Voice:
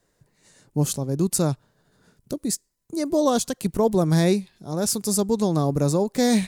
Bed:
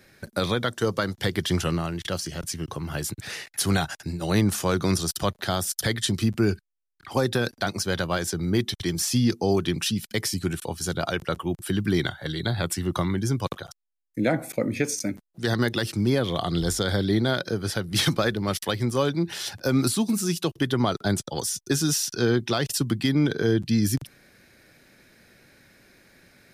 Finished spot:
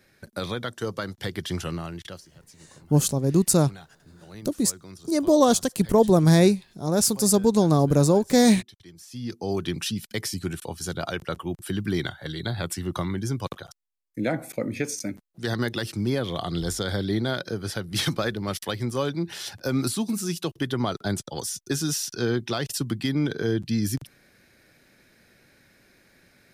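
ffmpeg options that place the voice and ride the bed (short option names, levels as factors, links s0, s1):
-filter_complex "[0:a]adelay=2150,volume=1.33[s0];[1:a]volume=4.22,afade=t=out:st=1.98:d=0.26:silence=0.16788,afade=t=in:st=9.08:d=0.59:silence=0.125893[s1];[s0][s1]amix=inputs=2:normalize=0"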